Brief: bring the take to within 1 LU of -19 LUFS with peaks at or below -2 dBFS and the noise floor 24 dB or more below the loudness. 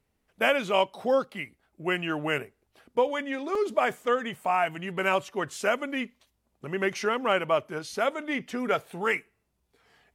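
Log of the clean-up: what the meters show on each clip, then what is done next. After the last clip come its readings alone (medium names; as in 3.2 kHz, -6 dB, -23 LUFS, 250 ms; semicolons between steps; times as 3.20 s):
dropouts 1; longest dropout 3.7 ms; loudness -28.0 LUFS; peak level -9.5 dBFS; loudness target -19.0 LUFS
-> interpolate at 3.55 s, 3.7 ms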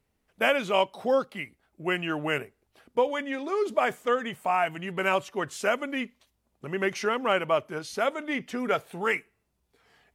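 dropouts 0; loudness -28.0 LUFS; peak level -9.5 dBFS; loudness target -19.0 LUFS
-> trim +9 dB; peak limiter -2 dBFS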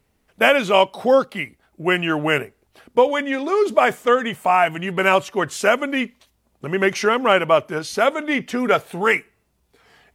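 loudness -19.0 LUFS; peak level -2.0 dBFS; noise floor -67 dBFS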